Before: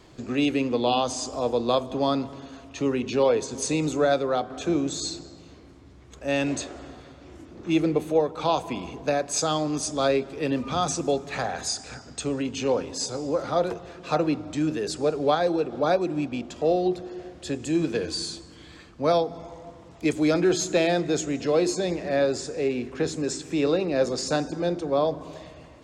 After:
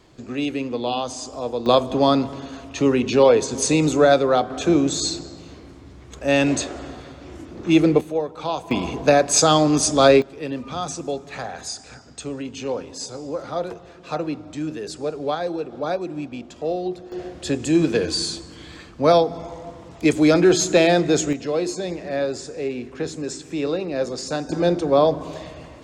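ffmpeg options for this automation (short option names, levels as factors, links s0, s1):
-af "asetnsamples=n=441:p=0,asendcmd='1.66 volume volume 7dB;8.01 volume volume -2dB;8.71 volume volume 9.5dB;10.22 volume volume -2.5dB;17.12 volume volume 6.5dB;21.33 volume volume -1dB;24.49 volume volume 7dB',volume=0.841"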